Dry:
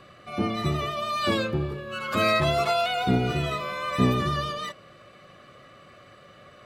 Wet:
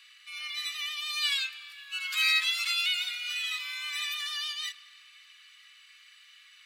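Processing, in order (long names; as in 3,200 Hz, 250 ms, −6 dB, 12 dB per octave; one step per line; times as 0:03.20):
inverse Chebyshev high-pass filter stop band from 490 Hz, stop band 70 dB
convolution reverb RT60 3.1 s, pre-delay 4 ms, DRR 18 dB
level +4.5 dB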